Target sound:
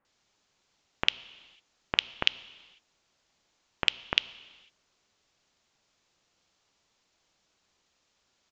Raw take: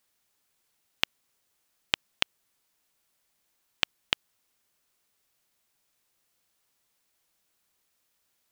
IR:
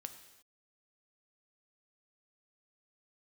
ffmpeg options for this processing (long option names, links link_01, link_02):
-filter_complex "[0:a]acontrast=38,acrossover=split=1800[link_01][link_02];[link_02]adelay=50[link_03];[link_01][link_03]amix=inputs=2:normalize=0,asplit=2[link_04][link_05];[1:a]atrim=start_sample=2205,asetrate=31752,aresample=44100,lowpass=6400[link_06];[link_05][link_06]afir=irnorm=-1:irlink=0,volume=-5dB[link_07];[link_04][link_07]amix=inputs=2:normalize=0,aresample=16000,aresample=44100,volume=-1.5dB"